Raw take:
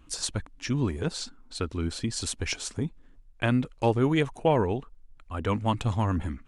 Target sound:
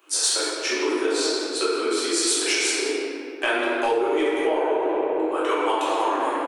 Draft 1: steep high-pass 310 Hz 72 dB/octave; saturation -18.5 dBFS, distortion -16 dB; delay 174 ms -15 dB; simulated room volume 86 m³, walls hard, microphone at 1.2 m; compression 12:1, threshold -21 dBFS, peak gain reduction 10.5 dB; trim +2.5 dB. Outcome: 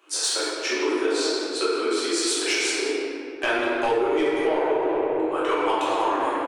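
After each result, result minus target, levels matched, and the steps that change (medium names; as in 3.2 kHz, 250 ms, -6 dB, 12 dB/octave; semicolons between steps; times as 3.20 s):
saturation: distortion +10 dB; 8 kHz band -3.0 dB
change: saturation -11.5 dBFS, distortion -26 dB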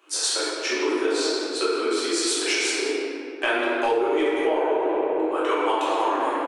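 8 kHz band -3.0 dB
add after compression: treble shelf 10 kHz +11 dB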